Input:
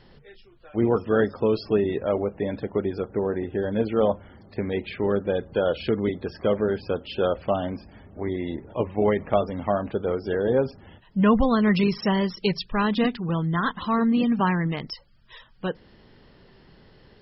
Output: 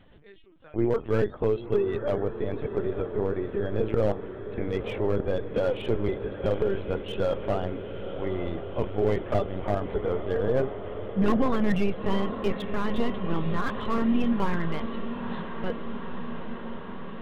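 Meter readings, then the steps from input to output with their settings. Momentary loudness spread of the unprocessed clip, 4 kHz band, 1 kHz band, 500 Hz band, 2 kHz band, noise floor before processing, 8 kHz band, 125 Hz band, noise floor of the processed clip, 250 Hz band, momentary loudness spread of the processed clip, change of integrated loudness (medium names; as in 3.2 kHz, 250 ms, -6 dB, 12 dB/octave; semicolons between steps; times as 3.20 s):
11 LU, -6.0 dB, -4.5 dB, -2.5 dB, -5.0 dB, -54 dBFS, no reading, -2.0 dB, -42 dBFS, -4.5 dB, 10 LU, -4.0 dB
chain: LPC vocoder at 8 kHz pitch kept; echo that smears into a reverb 942 ms, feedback 76%, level -11 dB; slew-rate limiter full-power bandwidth 74 Hz; trim -2.5 dB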